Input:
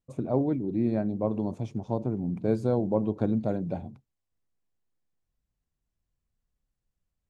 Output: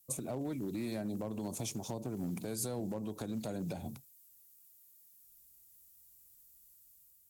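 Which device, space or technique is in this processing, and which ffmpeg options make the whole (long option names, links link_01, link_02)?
FM broadcast chain: -filter_complex "[0:a]highpass=frequency=53:poles=1,dynaudnorm=framelen=130:gausssize=7:maxgain=4dB,acrossover=split=250|870[link_01][link_02][link_03];[link_01]acompressor=threshold=-37dB:ratio=4[link_04];[link_02]acompressor=threshold=-36dB:ratio=4[link_05];[link_03]acompressor=threshold=-47dB:ratio=4[link_06];[link_04][link_05][link_06]amix=inputs=3:normalize=0,aemphasis=mode=production:type=75fm,alimiter=level_in=5dB:limit=-24dB:level=0:latency=1:release=135,volume=-5dB,asoftclip=type=hard:threshold=-30.5dB,lowpass=frequency=15000:width=0.5412,lowpass=frequency=15000:width=1.3066,aemphasis=mode=production:type=75fm"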